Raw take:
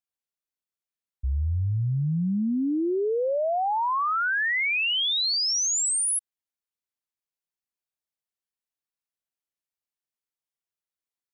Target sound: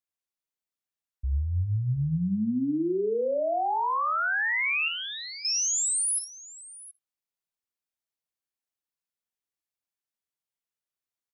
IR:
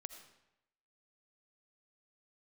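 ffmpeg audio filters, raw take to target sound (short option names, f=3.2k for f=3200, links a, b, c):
-filter_complex "[0:a]asettb=1/sr,asplit=3[a][b][c];[a]atrim=end=4.884[d];[b]atrim=start=4.88:end=5.45,asetpts=PTS-STARTPTS,afade=t=in:d=0.004:c=qsin,afade=t=out:st=0.566:d=0.004:c=qsin,lowpass=2.1k[e];[c]atrim=start=5.446[f];[d][e]acrossfade=d=0.004:c1=hsin:c2=qsin[g];[g][f]acrossfade=d=0.004:c1=qsin:c2=hsin,aecho=1:1:57|90|722:0.316|0.126|0.119,asplit=2[h][i];[1:a]atrim=start_sample=2205,atrim=end_sample=3528[j];[i][j]afir=irnorm=-1:irlink=0,volume=-5dB[k];[h][k]amix=inputs=2:normalize=0,volume=-4.5dB"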